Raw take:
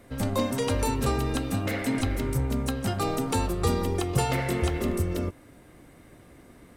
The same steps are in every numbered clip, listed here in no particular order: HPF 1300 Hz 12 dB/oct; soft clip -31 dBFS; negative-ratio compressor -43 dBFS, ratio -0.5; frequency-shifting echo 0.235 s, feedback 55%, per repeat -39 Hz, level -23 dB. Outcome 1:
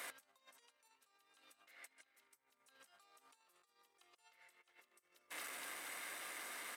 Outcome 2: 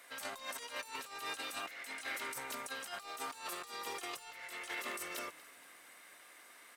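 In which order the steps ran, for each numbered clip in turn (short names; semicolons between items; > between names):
frequency-shifting echo > negative-ratio compressor > soft clip > HPF; HPF > soft clip > frequency-shifting echo > negative-ratio compressor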